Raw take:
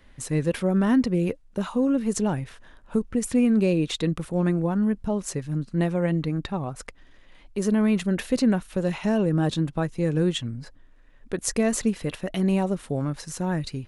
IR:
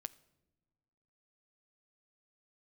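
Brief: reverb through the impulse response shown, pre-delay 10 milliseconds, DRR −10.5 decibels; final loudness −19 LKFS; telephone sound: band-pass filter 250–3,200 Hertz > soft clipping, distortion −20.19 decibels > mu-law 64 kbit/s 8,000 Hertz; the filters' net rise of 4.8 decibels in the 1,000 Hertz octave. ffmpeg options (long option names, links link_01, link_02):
-filter_complex "[0:a]equalizer=frequency=1000:width_type=o:gain=6.5,asplit=2[link_01][link_02];[1:a]atrim=start_sample=2205,adelay=10[link_03];[link_02][link_03]afir=irnorm=-1:irlink=0,volume=14dB[link_04];[link_01][link_04]amix=inputs=2:normalize=0,highpass=250,lowpass=3200,asoftclip=threshold=-4.5dB,volume=-1dB" -ar 8000 -c:a pcm_mulaw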